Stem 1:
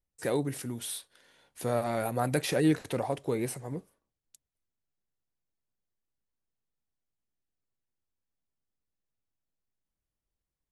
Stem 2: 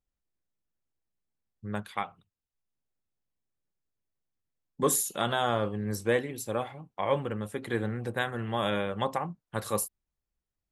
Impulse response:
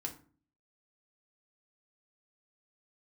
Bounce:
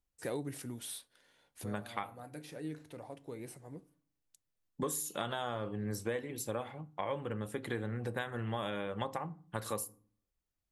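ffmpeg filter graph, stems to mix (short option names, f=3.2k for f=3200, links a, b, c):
-filter_complex "[0:a]volume=-7dB,asplit=2[a][b];[b]volume=-17.5dB[c];[1:a]volume=-3.5dB,asplit=3[d][e][f];[e]volume=-8.5dB[g];[f]apad=whole_len=472747[h];[a][h]sidechaincompress=threshold=-54dB:ratio=5:attack=35:release=1480[i];[2:a]atrim=start_sample=2205[j];[c][g]amix=inputs=2:normalize=0[k];[k][j]afir=irnorm=-1:irlink=0[l];[i][d][l]amix=inputs=3:normalize=0,acompressor=threshold=-33dB:ratio=6"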